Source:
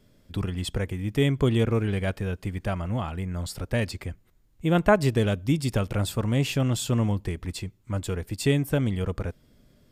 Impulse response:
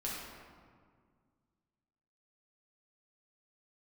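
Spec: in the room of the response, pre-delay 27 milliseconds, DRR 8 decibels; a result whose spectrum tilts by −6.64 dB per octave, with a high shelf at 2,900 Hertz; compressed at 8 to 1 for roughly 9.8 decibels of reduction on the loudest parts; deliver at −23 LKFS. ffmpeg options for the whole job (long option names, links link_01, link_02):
-filter_complex "[0:a]highshelf=frequency=2900:gain=-3.5,acompressor=threshold=-23dB:ratio=8,asplit=2[link_01][link_02];[1:a]atrim=start_sample=2205,adelay=27[link_03];[link_02][link_03]afir=irnorm=-1:irlink=0,volume=-10.5dB[link_04];[link_01][link_04]amix=inputs=2:normalize=0,volume=7dB"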